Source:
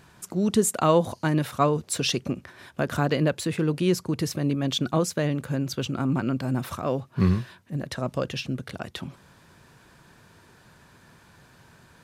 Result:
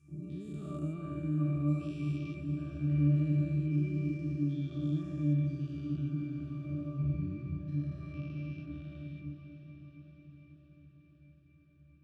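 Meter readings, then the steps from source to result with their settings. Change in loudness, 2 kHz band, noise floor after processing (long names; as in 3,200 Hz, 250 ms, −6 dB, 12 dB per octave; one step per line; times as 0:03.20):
−8.5 dB, −18.5 dB, −62 dBFS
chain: every bin's largest magnitude spread in time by 480 ms
flat-topped bell 800 Hz −16 dB
resonances in every octave D, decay 0.45 s
feedback delay with all-pass diffusion 503 ms, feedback 65%, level −9.5 dB
level −1.5 dB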